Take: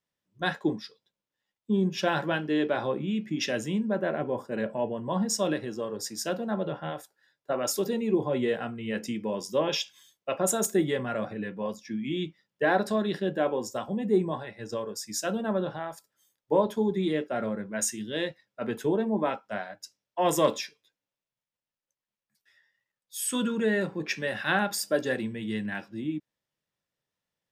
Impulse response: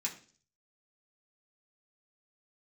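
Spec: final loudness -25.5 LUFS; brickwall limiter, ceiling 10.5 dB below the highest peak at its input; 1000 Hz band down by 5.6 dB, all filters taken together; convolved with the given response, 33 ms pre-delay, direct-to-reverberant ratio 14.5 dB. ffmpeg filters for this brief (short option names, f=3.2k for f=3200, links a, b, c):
-filter_complex "[0:a]equalizer=f=1k:t=o:g=-8,alimiter=limit=-24dB:level=0:latency=1,asplit=2[a][b];[1:a]atrim=start_sample=2205,adelay=33[c];[b][c]afir=irnorm=-1:irlink=0,volume=-16dB[d];[a][d]amix=inputs=2:normalize=0,volume=8.5dB"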